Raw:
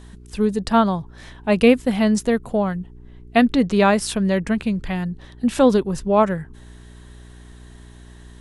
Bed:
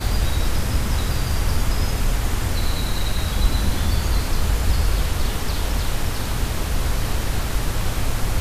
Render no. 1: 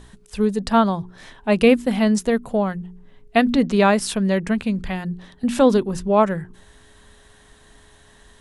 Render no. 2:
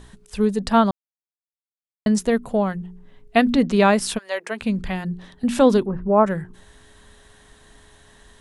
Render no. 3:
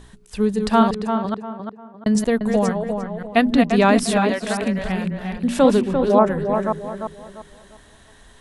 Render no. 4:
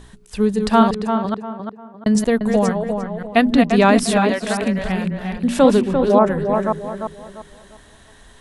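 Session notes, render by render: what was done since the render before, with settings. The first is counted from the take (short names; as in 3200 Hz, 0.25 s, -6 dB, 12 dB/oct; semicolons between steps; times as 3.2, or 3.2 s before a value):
de-hum 60 Hz, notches 6
0.91–2.06 mute; 4.17–4.6 HPF 890 Hz -> 290 Hz 24 dB/oct; 5.86–6.26 LPF 1700 Hz 24 dB/oct
reverse delay 0.269 s, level -6 dB; on a send: tape echo 0.348 s, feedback 36%, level -5 dB, low-pass 1800 Hz
gain +2 dB; limiter -3 dBFS, peak gain reduction 2.5 dB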